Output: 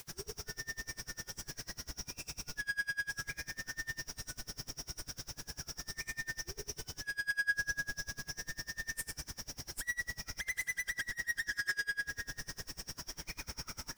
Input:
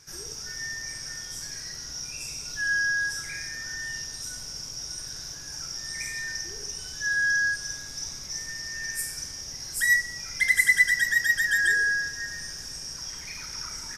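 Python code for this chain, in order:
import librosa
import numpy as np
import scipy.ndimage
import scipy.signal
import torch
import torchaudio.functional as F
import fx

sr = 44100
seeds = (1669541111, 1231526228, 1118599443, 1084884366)

y = fx.tilt_shelf(x, sr, db=4.5, hz=1400.0)
y = fx.quant_dither(y, sr, seeds[0], bits=8, dither='triangular')
y = 10.0 ** (-32.0 / 20.0) * np.tanh(y / 10.0 ** (-32.0 / 20.0))
y = fx.peak_eq(y, sr, hz=5900.0, db=10.0, octaves=0.25, at=(11.43, 11.84))
y = fx.rev_spring(y, sr, rt60_s=3.2, pass_ms=(34,), chirp_ms=40, drr_db=7.0)
y = y * 10.0 ** (-29 * (0.5 - 0.5 * np.cos(2.0 * np.pi * 10.0 * np.arange(len(y)) / sr)) / 20.0)
y = F.gain(torch.from_numpy(y), 1.0).numpy()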